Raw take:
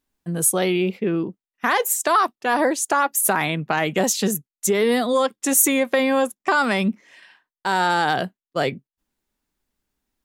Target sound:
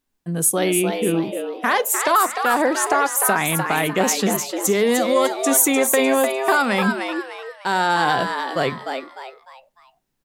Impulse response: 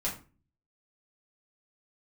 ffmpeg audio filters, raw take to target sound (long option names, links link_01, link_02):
-filter_complex "[0:a]asplit=5[link_01][link_02][link_03][link_04][link_05];[link_02]adelay=301,afreqshift=130,volume=-6dB[link_06];[link_03]adelay=602,afreqshift=260,volume=-14.6dB[link_07];[link_04]adelay=903,afreqshift=390,volume=-23.3dB[link_08];[link_05]adelay=1204,afreqshift=520,volume=-31.9dB[link_09];[link_01][link_06][link_07][link_08][link_09]amix=inputs=5:normalize=0,asplit=2[link_10][link_11];[1:a]atrim=start_sample=2205,asetrate=48510,aresample=44100[link_12];[link_11][link_12]afir=irnorm=-1:irlink=0,volume=-20.5dB[link_13];[link_10][link_13]amix=inputs=2:normalize=0"